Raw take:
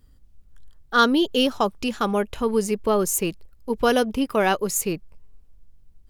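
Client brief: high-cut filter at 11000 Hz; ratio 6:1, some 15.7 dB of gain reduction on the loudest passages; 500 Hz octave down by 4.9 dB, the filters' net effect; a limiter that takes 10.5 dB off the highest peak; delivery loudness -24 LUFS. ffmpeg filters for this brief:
-af "lowpass=11k,equalizer=f=500:t=o:g=-6,acompressor=threshold=-31dB:ratio=6,volume=16dB,alimiter=limit=-14.5dB:level=0:latency=1"

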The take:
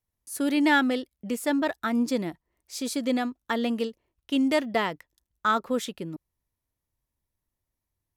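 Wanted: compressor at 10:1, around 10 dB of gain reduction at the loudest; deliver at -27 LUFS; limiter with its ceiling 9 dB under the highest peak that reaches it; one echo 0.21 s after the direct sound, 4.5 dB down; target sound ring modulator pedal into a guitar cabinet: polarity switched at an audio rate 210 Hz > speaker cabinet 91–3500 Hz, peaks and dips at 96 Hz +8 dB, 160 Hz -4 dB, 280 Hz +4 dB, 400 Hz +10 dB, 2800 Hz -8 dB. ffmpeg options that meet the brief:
-af "acompressor=threshold=-28dB:ratio=10,alimiter=level_in=2dB:limit=-24dB:level=0:latency=1,volume=-2dB,aecho=1:1:210:0.596,aeval=exprs='val(0)*sgn(sin(2*PI*210*n/s))':c=same,highpass=91,equalizer=f=96:t=q:w=4:g=8,equalizer=f=160:t=q:w=4:g=-4,equalizer=f=280:t=q:w=4:g=4,equalizer=f=400:t=q:w=4:g=10,equalizer=f=2.8k:t=q:w=4:g=-8,lowpass=f=3.5k:w=0.5412,lowpass=f=3.5k:w=1.3066,volume=5.5dB"

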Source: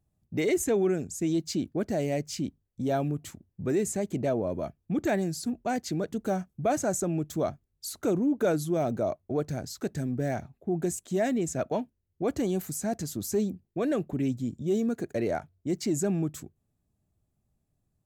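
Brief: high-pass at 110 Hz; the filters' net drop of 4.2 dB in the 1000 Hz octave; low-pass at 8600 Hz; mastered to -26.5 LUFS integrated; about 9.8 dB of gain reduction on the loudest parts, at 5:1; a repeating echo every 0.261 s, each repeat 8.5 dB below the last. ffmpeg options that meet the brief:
-af "highpass=110,lowpass=8.6k,equalizer=f=1k:t=o:g=-7.5,acompressor=threshold=-34dB:ratio=5,aecho=1:1:261|522|783|1044:0.376|0.143|0.0543|0.0206,volume=11.5dB"

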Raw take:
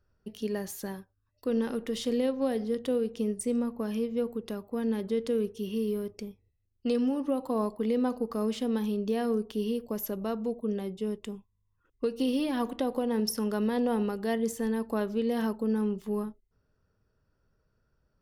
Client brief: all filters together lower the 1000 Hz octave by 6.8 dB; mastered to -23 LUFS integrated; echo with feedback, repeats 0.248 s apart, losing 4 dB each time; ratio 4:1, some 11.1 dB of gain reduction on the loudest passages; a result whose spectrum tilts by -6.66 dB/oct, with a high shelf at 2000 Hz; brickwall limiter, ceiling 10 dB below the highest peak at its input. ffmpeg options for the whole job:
-af "equalizer=f=1k:t=o:g=-8,highshelf=f=2k:g=-7.5,acompressor=threshold=-39dB:ratio=4,alimiter=level_in=13.5dB:limit=-24dB:level=0:latency=1,volume=-13.5dB,aecho=1:1:248|496|744|992|1240|1488|1736|1984|2232:0.631|0.398|0.25|0.158|0.0994|0.0626|0.0394|0.0249|0.0157,volume=21dB"

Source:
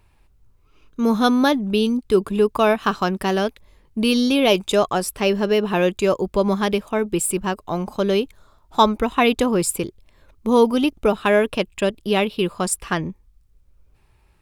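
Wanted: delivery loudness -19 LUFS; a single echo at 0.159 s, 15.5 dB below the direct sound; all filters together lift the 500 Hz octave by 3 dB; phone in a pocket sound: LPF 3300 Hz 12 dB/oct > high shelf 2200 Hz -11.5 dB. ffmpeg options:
-af "lowpass=3.3k,equalizer=f=500:t=o:g=4.5,highshelf=f=2.2k:g=-11.5,aecho=1:1:159:0.168"

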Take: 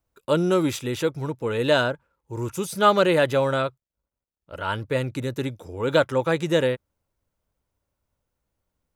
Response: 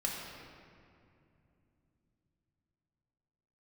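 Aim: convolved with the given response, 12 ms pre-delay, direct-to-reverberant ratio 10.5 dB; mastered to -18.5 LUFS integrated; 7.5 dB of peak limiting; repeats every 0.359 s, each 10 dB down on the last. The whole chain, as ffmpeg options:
-filter_complex "[0:a]alimiter=limit=-13dB:level=0:latency=1,aecho=1:1:359|718|1077|1436:0.316|0.101|0.0324|0.0104,asplit=2[a][b];[1:a]atrim=start_sample=2205,adelay=12[c];[b][c]afir=irnorm=-1:irlink=0,volume=-14.5dB[d];[a][d]amix=inputs=2:normalize=0,volume=6.5dB"

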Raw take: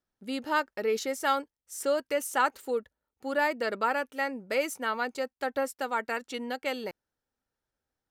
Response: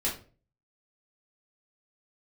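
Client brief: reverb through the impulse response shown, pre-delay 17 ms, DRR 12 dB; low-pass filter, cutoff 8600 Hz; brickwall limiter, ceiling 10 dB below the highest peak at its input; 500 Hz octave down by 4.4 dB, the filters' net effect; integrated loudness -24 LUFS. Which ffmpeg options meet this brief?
-filter_complex "[0:a]lowpass=8.6k,equalizer=f=500:t=o:g=-5,alimiter=level_in=0.5dB:limit=-24dB:level=0:latency=1,volume=-0.5dB,asplit=2[a][b];[1:a]atrim=start_sample=2205,adelay=17[c];[b][c]afir=irnorm=-1:irlink=0,volume=-18.5dB[d];[a][d]amix=inputs=2:normalize=0,volume=12dB"

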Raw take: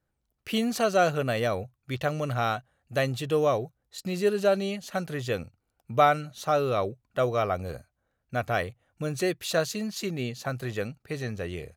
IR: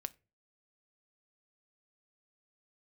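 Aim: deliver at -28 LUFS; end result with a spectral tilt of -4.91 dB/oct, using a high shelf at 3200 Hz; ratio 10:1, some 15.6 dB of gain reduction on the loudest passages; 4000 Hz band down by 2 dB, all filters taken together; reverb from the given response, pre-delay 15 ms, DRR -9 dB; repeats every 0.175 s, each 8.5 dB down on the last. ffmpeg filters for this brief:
-filter_complex "[0:a]highshelf=f=3.2k:g=5.5,equalizer=f=4k:t=o:g=-6.5,acompressor=threshold=-31dB:ratio=10,aecho=1:1:175|350|525|700:0.376|0.143|0.0543|0.0206,asplit=2[a][b];[1:a]atrim=start_sample=2205,adelay=15[c];[b][c]afir=irnorm=-1:irlink=0,volume=11.5dB[d];[a][d]amix=inputs=2:normalize=0,volume=-2dB"

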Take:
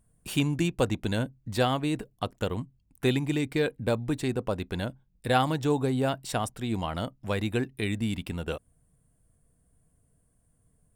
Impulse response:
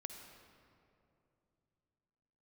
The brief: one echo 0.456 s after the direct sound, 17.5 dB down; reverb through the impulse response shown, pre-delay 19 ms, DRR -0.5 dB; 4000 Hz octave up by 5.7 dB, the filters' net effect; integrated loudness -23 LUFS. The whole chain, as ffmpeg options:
-filter_complex "[0:a]equalizer=f=4k:t=o:g=7,aecho=1:1:456:0.133,asplit=2[a][b];[1:a]atrim=start_sample=2205,adelay=19[c];[b][c]afir=irnorm=-1:irlink=0,volume=4dB[d];[a][d]amix=inputs=2:normalize=0,volume=2.5dB"

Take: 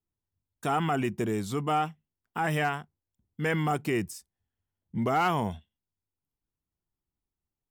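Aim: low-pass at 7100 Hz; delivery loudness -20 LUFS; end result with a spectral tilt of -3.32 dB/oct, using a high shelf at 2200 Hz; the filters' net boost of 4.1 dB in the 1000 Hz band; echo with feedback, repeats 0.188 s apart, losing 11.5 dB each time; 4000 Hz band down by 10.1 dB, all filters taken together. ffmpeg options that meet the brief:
-af "lowpass=7.1k,equalizer=f=1k:t=o:g=8,highshelf=f=2.2k:g=-7.5,equalizer=f=4k:t=o:g=-9,aecho=1:1:188|376|564:0.266|0.0718|0.0194,volume=7.5dB"

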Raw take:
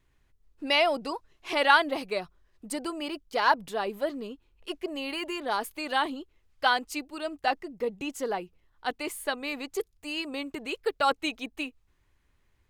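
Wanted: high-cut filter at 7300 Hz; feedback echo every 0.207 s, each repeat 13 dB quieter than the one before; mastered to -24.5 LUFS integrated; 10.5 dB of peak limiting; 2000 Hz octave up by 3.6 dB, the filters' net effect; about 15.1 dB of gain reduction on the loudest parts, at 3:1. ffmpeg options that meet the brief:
-af "lowpass=7.3k,equalizer=f=2k:t=o:g=5,acompressor=threshold=-34dB:ratio=3,alimiter=level_in=4dB:limit=-24dB:level=0:latency=1,volume=-4dB,aecho=1:1:207|414|621:0.224|0.0493|0.0108,volume=14.5dB"

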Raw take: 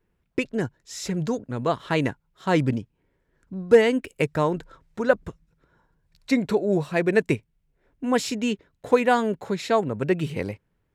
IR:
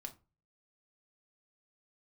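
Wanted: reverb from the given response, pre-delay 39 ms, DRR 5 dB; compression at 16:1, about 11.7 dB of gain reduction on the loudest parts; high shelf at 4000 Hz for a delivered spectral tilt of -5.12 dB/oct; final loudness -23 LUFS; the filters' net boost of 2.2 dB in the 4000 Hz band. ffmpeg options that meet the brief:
-filter_complex "[0:a]highshelf=f=4k:g=-6,equalizer=f=4k:t=o:g=6.5,acompressor=threshold=-22dB:ratio=16,asplit=2[a][b];[1:a]atrim=start_sample=2205,adelay=39[c];[b][c]afir=irnorm=-1:irlink=0,volume=-1dB[d];[a][d]amix=inputs=2:normalize=0,volume=5.5dB"

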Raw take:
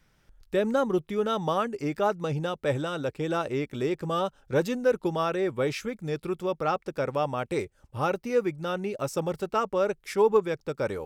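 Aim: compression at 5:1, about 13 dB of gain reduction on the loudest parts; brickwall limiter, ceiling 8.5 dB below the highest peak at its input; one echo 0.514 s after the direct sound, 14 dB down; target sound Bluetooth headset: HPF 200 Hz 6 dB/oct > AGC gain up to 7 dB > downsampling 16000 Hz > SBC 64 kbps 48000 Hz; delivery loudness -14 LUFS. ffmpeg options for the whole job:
-af "acompressor=threshold=-32dB:ratio=5,alimiter=level_in=6.5dB:limit=-24dB:level=0:latency=1,volume=-6.5dB,highpass=f=200:p=1,aecho=1:1:514:0.2,dynaudnorm=m=7dB,aresample=16000,aresample=44100,volume=27dB" -ar 48000 -c:a sbc -b:a 64k

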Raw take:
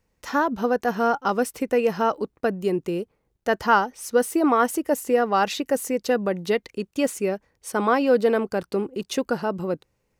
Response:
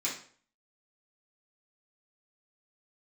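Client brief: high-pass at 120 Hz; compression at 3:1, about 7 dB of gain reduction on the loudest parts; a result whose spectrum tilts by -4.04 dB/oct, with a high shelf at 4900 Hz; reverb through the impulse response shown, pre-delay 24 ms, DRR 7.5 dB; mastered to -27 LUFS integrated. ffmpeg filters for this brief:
-filter_complex "[0:a]highpass=120,highshelf=f=4.9k:g=3.5,acompressor=threshold=-23dB:ratio=3,asplit=2[a][b];[1:a]atrim=start_sample=2205,adelay=24[c];[b][c]afir=irnorm=-1:irlink=0,volume=-12.5dB[d];[a][d]amix=inputs=2:normalize=0,volume=0.5dB"

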